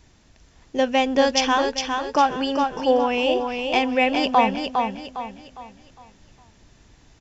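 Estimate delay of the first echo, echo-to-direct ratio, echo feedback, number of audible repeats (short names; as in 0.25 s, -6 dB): 0.407 s, -4.5 dB, 37%, 4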